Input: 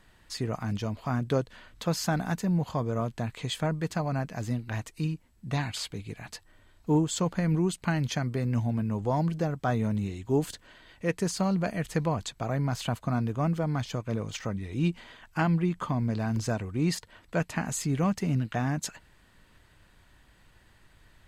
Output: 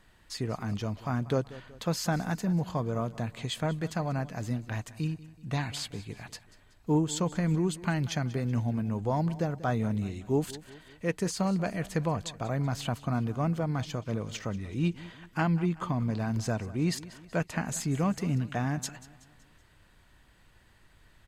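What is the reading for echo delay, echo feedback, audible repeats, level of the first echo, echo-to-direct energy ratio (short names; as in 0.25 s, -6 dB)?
0.188 s, 47%, 3, -18.0 dB, -17.0 dB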